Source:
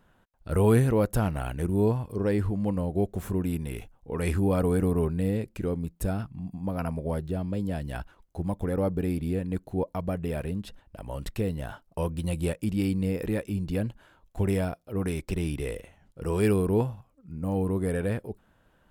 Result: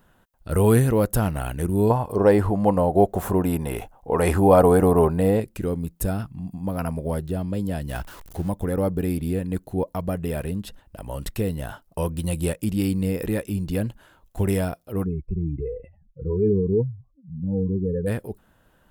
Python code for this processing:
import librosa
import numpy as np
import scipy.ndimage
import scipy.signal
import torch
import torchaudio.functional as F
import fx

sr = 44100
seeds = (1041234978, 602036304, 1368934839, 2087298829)

y = fx.peak_eq(x, sr, hz=770.0, db=14.5, octaves=1.6, at=(1.9, 5.4))
y = fx.zero_step(y, sr, step_db=-43.0, at=(7.89, 8.49))
y = fx.spec_expand(y, sr, power=2.7, at=(15.04, 18.06), fade=0.02)
y = fx.high_shelf(y, sr, hz=9300.0, db=10.0)
y = fx.notch(y, sr, hz=2300.0, q=23.0)
y = F.gain(torch.from_numpy(y), 3.5).numpy()